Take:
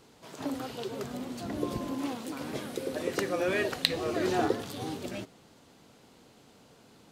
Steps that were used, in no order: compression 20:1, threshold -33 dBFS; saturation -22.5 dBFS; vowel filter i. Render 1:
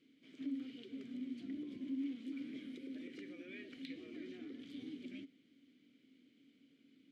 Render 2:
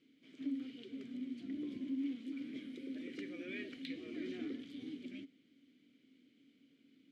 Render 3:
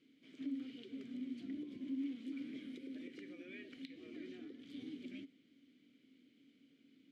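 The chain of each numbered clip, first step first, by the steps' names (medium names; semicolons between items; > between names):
saturation > compression > vowel filter; saturation > vowel filter > compression; compression > saturation > vowel filter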